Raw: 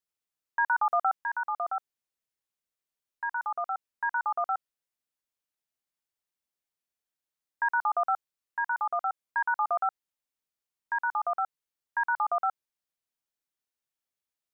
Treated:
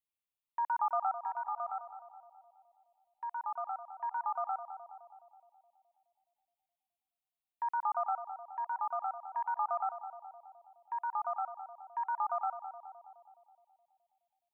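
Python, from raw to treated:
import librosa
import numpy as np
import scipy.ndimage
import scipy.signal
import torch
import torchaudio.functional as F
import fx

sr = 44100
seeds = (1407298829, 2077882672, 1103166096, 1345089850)

y = fx.fixed_phaser(x, sr, hz=1600.0, stages=6)
y = fx.echo_banded(y, sr, ms=210, feedback_pct=62, hz=560.0, wet_db=-9)
y = y * librosa.db_to_amplitude(-4.0)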